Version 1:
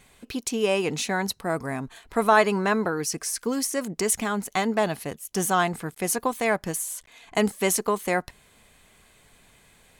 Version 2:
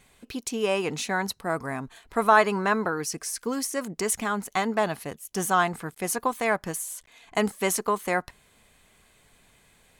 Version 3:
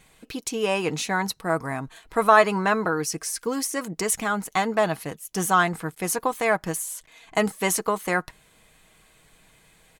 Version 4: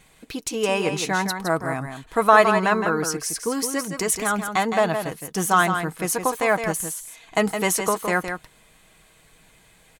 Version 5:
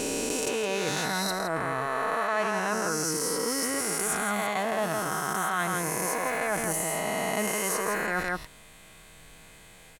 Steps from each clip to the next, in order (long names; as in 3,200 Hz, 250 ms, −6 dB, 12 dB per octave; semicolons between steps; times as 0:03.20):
dynamic equaliser 1,200 Hz, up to +5 dB, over −38 dBFS, Q 1.1; level −3 dB
comb filter 6.3 ms, depth 36%; level +2 dB
single-tap delay 164 ms −7.5 dB; level +1.5 dB
peak hold with a rise ahead of every peak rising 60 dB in 2.62 s; reversed playback; downward compressor 6 to 1, threshold −26 dBFS, peak gain reduction 18.5 dB; reversed playback